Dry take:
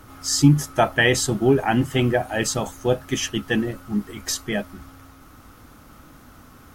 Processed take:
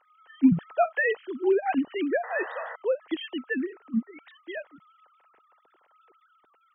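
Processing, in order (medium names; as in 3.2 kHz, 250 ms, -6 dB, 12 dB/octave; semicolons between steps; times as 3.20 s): formants replaced by sine waves; random-step tremolo; painted sound noise, 2.23–2.76 s, 460–2000 Hz -35 dBFS; trim -3 dB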